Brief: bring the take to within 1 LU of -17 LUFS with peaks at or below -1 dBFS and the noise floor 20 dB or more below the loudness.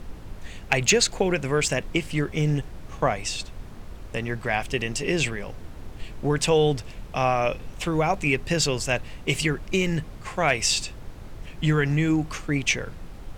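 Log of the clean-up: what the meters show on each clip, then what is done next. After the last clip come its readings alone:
noise floor -41 dBFS; noise floor target -45 dBFS; loudness -24.5 LUFS; peak level -6.0 dBFS; loudness target -17.0 LUFS
-> noise print and reduce 6 dB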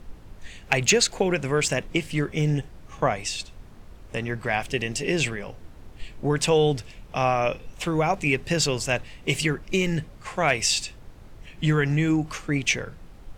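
noise floor -46 dBFS; loudness -24.5 LUFS; peak level -6.0 dBFS; loudness target -17.0 LUFS
-> trim +7.5 dB; peak limiter -1 dBFS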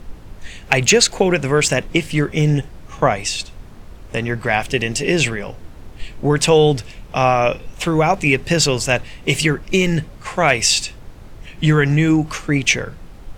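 loudness -17.5 LUFS; peak level -1.0 dBFS; noise floor -39 dBFS

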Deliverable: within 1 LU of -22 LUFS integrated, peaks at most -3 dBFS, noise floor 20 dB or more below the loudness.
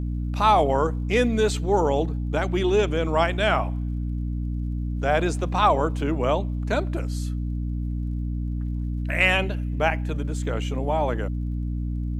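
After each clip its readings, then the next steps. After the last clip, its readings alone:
tick rate 43 per s; hum 60 Hz; highest harmonic 300 Hz; hum level -25 dBFS; loudness -24.5 LUFS; peak level -6.5 dBFS; loudness target -22.0 LUFS
-> de-click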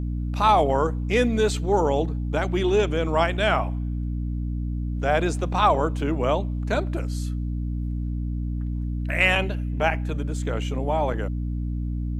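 tick rate 0.082 per s; hum 60 Hz; highest harmonic 300 Hz; hum level -25 dBFS
-> de-hum 60 Hz, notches 5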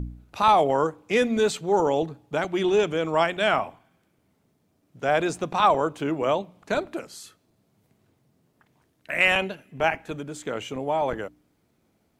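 hum not found; loudness -24.5 LUFS; peak level -7.5 dBFS; loudness target -22.0 LUFS
-> trim +2.5 dB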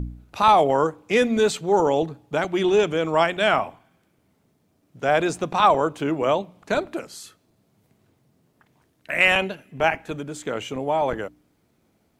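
loudness -22.0 LUFS; peak level -5.0 dBFS; noise floor -67 dBFS

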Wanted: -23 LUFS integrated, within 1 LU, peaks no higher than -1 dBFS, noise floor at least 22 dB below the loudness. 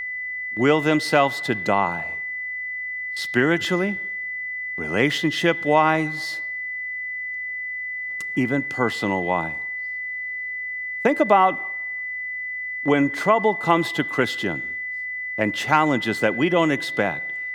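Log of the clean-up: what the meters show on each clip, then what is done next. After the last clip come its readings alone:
steady tone 2 kHz; tone level -27 dBFS; loudness -22.5 LUFS; peak level -3.0 dBFS; loudness target -23.0 LUFS
-> band-stop 2 kHz, Q 30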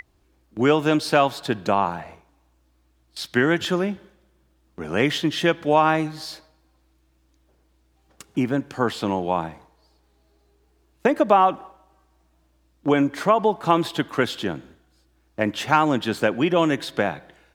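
steady tone not found; loudness -22.0 LUFS; peak level -3.5 dBFS; loudness target -23.0 LUFS
-> trim -1 dB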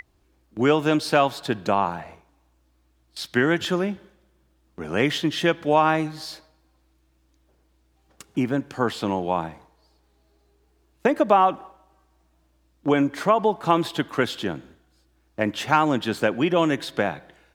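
loudness -23.0 LUFS; peak level -4.5 dBFS; noise floor -64 dBFS

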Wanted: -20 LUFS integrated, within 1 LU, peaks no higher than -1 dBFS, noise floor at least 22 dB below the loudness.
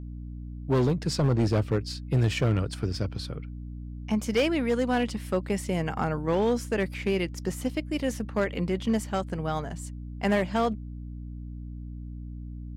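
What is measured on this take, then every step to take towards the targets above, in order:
clipped samples 1.2%; clipping level -18.0 dBFS; hum 60 Hz; highest harmonic 300 Hz; hum level -36 dBFS; loudness -28.0 LUFS; peak level -18.0 dBFS; loudness target -20.0 LUFS
-> clip repair -18 dBFS; de-hum 60 Hz, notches 5; trim +8 dB

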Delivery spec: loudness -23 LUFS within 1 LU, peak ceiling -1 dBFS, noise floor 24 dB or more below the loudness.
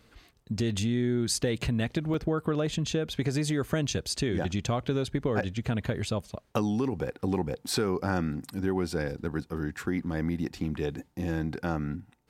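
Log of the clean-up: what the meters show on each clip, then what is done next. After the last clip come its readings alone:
dropouts 1; longest dropout 2.2 ms; loudness -30.5 LUFS; peak level -10.5 dBFS; loudness target -23.0 LUFS
-> interpolate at 2.14 s, 2.2 ms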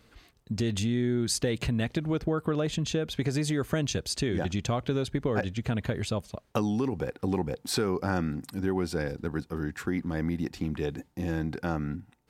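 dropouts 0; loudness -30.5 LUFS; peak level -10.5 dBFS; loudness target -23.0 LUFS
-> trim +7.5 dB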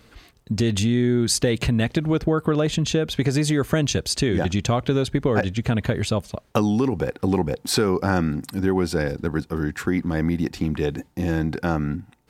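loudness -23.0 LUFS; peak level -3.0 dBFS; noise floor -57 dBFS

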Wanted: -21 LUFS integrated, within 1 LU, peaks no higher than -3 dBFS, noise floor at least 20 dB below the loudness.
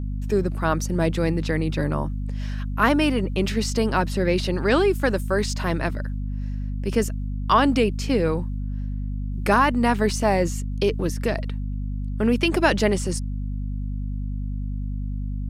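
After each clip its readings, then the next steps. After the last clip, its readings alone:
hum 50 Hz; highest harmonic 250 Hz; hum level -25 dBFS; loudness -24.0 LUFS; peak level -4.5 dBFS; loudness target -21.0 LUFS
-> de-hum 50 Hz, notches 5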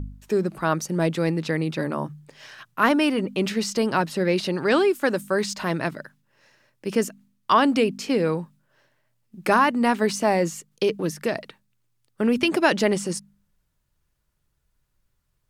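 hum not found; loudness -23.5 LUFS; peak level -4.5 dBFS; loudness target -21.0 LUFS
-> trim +2.5 dB; peak limiter -3 dBFS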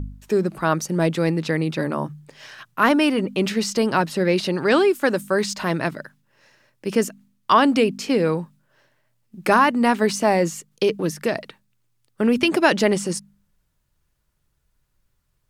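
loudness -21.0 LUFS; peak level -3.0 dBFS; noise floor -70 dBFS

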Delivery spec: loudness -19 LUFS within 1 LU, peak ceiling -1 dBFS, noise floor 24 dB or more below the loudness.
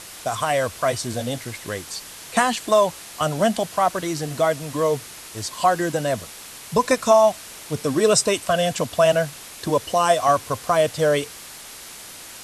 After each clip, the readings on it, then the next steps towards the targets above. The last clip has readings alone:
noise floor -40 dBFS; noise floor target -46 dBFS; loudness -21.5 LUFS; peak level -5.0 dBFS; loudness target -19.0 LUFS
-> noise reduction 6 dB, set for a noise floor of -40 dBFS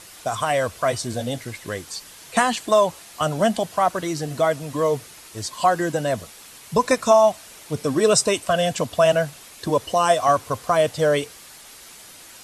noise floor -44 dBFS; noise floor target -46 dBFS
-> noise reduction 6 dB, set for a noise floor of -44 dBFS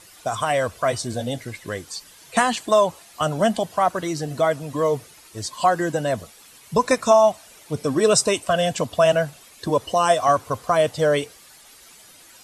noise floor -49 dBFS; loudness -21.5 LUFS; peak level -5.0 dBFS; loudness target -19.0 LUFS
-> trim +2.5 dB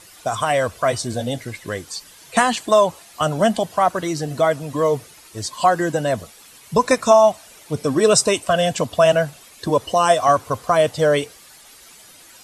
loudness -19.0 LUFS; peak level -2.5 dBFS; noise floor -46 dBFS

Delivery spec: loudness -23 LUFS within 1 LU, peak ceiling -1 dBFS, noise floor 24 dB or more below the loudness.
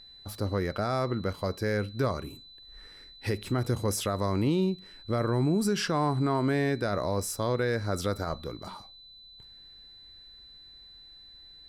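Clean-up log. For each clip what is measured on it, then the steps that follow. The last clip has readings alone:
steady tone 4 kHz; tone level -49 dBFS; loudness -29.5 LUFS; peak level -17.5 dBFS; loudness target -23.0 LUFS
-> band-stop 4 kHz, Q 30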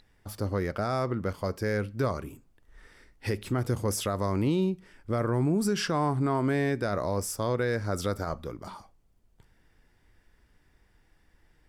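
steady tone not found; loudness -29.5 LUFS; peak level -17.5 dBFS; loudness target -23.0 LUFS
-> trim +6.5 dB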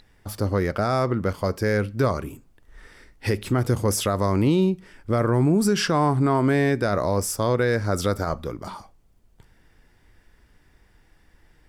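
loudness -23.0 LUFS; peak level -11.0 dBFS; noise floor -59 dBFS

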